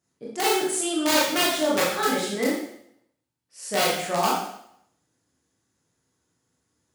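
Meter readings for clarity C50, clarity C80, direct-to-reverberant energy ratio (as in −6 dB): 1.5 dB, 5.5 dB, −6.0 dB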